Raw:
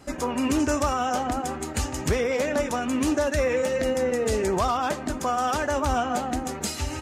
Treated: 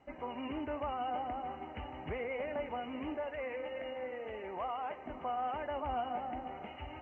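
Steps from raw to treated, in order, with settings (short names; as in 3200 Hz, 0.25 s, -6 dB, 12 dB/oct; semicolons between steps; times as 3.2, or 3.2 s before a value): 3.17–5.06 low shelf 340 Hz -10.5 dB; companded quantiser 6-bit; rippled Chebyshev low-pass 3000 Hz, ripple 9 dB; diffused feedback echo 0.582 s, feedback 48%, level -14.5 dB; gain -9 dB; SBC 192 kbps 16000 Hz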